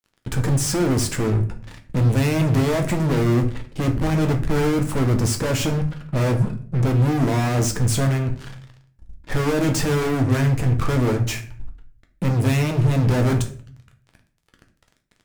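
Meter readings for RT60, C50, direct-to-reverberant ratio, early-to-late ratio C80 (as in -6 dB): 0.50 s, 12.0 dB, 4.0 dB, 16.0 dB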